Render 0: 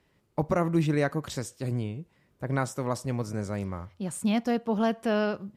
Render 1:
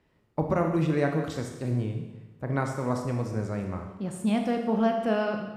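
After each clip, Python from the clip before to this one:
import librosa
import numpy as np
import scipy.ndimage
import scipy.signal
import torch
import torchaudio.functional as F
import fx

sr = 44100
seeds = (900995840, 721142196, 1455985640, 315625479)

y = fx.high_shelf(x, sr, hz=3700.0, db=-9.0)
y = fx.rev_schroeder(y, sr, rt60_s=1.1, comb_ms=25, drr_db=3.5)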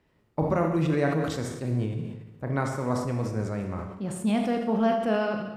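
y = fx.sustainer(x, sr, db_per_s=53.0)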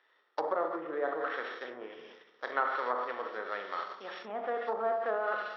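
y = np.r_[np.sort(x[:len(x) // 8 * 8].reshape(-1, 8), axis=1).ravel(), x[len(x) // 8 * 8:]]
y = fx.env_lowpass_down(y, sr, base_hz=760.0, full_db=-20.5)
y = fx.cabinet(y, sr, low_hz=490.0, low_slope=24, high_hz=3800.0, hz=(620.0, 1300.0, 1800.0, 3400.0), db=(-5, 9, 10, 7))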